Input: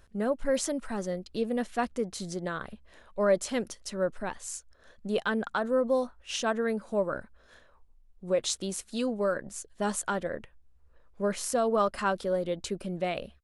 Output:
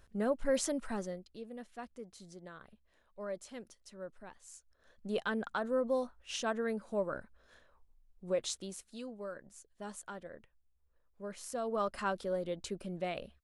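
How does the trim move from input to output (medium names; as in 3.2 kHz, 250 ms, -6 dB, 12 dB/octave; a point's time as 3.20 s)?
0.94 s -3.5 dB
1.40 s -16.5 dB
4.43 s -16.5 dB
5.10 s -6 dB
8.36 s -6 dB
9.07 s -15 dB
11.24 s -15 dB
11.94 s -6.5 dB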